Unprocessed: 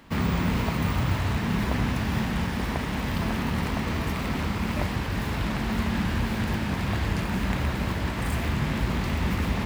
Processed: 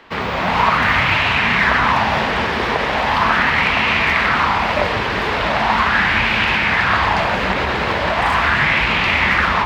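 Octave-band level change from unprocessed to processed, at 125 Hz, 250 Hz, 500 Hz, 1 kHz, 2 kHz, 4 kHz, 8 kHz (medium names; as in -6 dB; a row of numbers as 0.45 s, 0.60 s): 0.0 dB, +1.5 dB, +12.0 dB, +17.5 dB, +19.0 dB, +15.0 dB, +3.0 dB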